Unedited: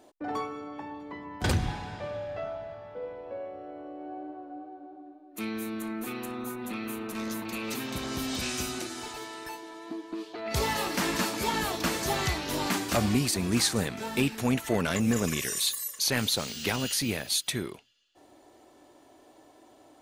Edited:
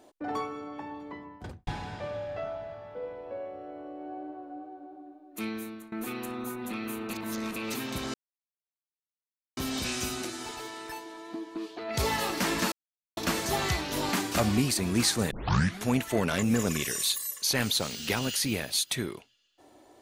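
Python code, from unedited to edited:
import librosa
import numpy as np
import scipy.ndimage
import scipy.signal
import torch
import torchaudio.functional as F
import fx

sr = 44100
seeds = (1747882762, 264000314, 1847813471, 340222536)

y = fx.studio_fade_out(x, sr, start_s=1.02, length_s=0.65)
y = fx.edit(y, sr, fx.fade_out_to(start_s=5.46, length_s=0.46, floor_db=-20.0),
    fx.reverse_span(start_s=7.1, length_s=0.46),
    fx.insert_silence(at_s=8.14, length_s=1.43),
    fx.silence(start_s=11.29, length_s=0.45),
    fx.tape_start(start_s=13.88, length_s=0.53), tone=tone)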